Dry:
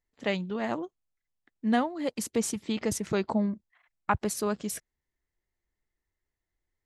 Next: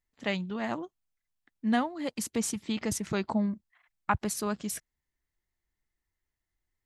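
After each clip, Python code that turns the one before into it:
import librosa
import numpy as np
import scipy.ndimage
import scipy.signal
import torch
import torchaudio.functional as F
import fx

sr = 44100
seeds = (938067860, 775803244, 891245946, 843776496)

y = fx.peak_eq(x, sr, hz=460.0, db=-5.5, octaves=0.98)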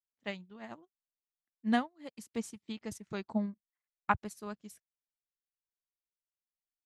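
y = fx.upward_expand(x, sr, threshold_db=-43.0, expansion=2.5)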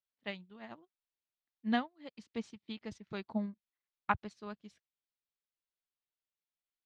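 y = fx.ladder_lowpass(x, sr, hz=5000.0, resonance_pct=30)
y = F.gain(torch.from_numpy(y), 4.0).numpy()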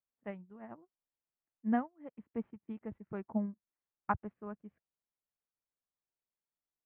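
y = scipy.ndimage.gaussian_filter1d(x, 5.5, mode='constant')
y = F.gain(torch.from_numpy(y), 1.5).numpy()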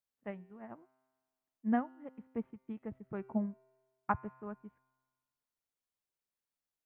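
y = fx.comb_fb(x, sr, f0_hz=130.0, decay_s=1.5, harmonics='all', damping=0.0, mix_pct=50)
y = F.gain(torch.from_numpy(y), 6.0).numpy()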